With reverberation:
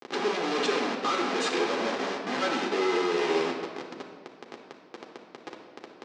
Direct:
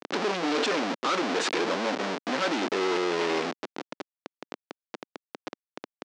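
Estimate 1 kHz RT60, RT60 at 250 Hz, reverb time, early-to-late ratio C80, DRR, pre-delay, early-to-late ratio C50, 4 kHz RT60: 1.5 s, 1.9 s, 1.6 s, 6.5 dB, 0.5 dB, 3 ms, 4.0 dB, 1.1 s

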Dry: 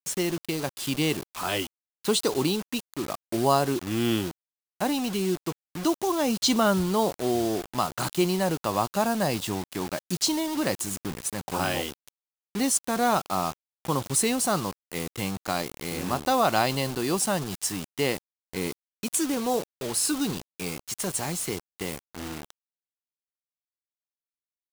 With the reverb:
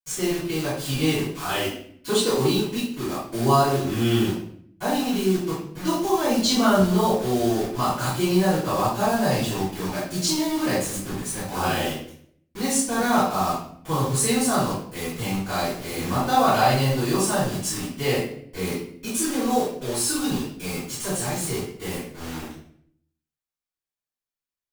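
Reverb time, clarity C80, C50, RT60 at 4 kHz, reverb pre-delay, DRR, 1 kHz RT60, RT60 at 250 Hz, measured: 0.65 s, 6.0 dB, 1.0 dB, 0.50 s, 3 ms, -15.5 dB, 0.55 s, 0.85 s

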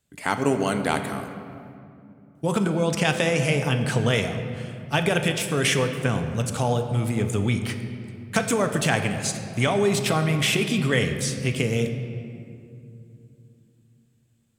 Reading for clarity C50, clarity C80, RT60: 7.5 dB, 8.5 dB, 2.6 s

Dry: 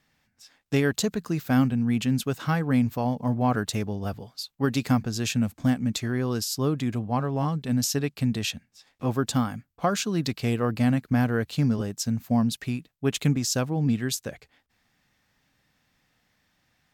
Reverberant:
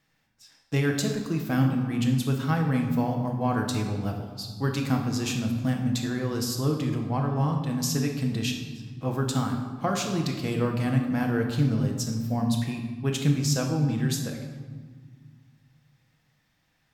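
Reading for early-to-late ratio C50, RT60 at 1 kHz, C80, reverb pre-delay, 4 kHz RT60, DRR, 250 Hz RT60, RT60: 5.0 dB, 1.6 s, 7.5 dB, 6 ms, 1.0 s, 1.5 dB, 2.5 s, 1.6 s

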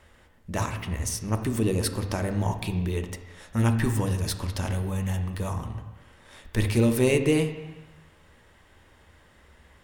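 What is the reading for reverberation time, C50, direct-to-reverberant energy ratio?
1.1 s, 8.5 dB, 6.5 dB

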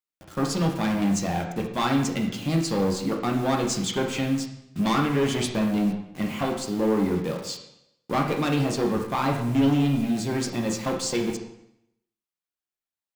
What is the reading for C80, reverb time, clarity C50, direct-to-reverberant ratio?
8.5 dB, 0.80 s, 5.5 dB, 0.5 dB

